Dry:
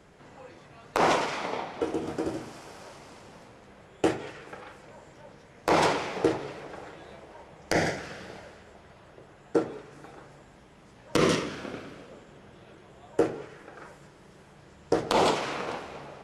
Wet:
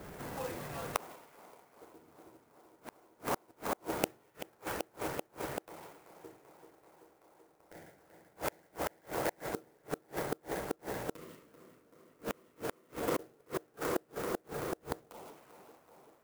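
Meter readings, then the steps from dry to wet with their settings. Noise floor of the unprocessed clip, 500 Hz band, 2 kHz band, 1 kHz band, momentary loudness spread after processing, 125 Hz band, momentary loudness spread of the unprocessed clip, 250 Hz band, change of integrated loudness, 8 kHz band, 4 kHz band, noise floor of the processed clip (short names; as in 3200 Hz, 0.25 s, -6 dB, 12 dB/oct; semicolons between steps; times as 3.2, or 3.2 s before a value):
-54 dBFS, -10.0 dB, -10.0 dB, -10.5 dB, 21 LU, -9.5 dB, 23 LU, -10.5 dB, -11.0 dB, -5.5 dB, -13.0 dB, -68 dBFS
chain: tape echo 0.385 s, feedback 83%, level -7 dB, low-pass 4800 Hz; flipped gate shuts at -29 dBFS, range -36 dB; low-pass opened by the level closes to 2000 Hz, open at -44.5 dBFS; clock jitter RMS 0.054 ms; gain +8 dB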